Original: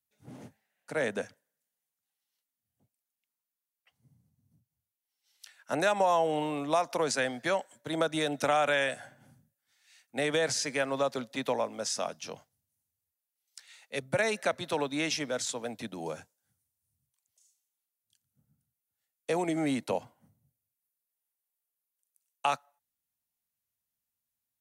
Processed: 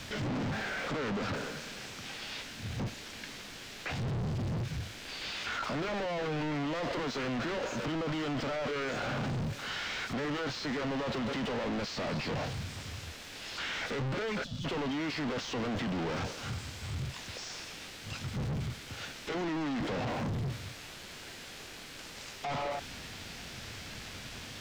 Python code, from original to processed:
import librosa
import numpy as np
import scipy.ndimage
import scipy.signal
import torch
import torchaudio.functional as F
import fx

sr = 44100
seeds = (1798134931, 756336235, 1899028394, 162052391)

y = np.sign(x) * np.sqrt(np.mean(np.square(x)))
y = fx.peak_eq(y, sr, hz=1100.0, db=-7.0, octaves=1.3)
y = fx.leveller(y, sr, passes=5)
y = fx.spec_box(y, sr, start_s=14.44, length_s=0.21, low_hz=280.0, high_hz=3300.0, gain_db=-21)
y = fx.formant_shift(y, sr, semitones=-3)
y = fx.air_absorb(y, sr, metres=180.0)
y = y * librosa.db_to_amplitude(-1.0)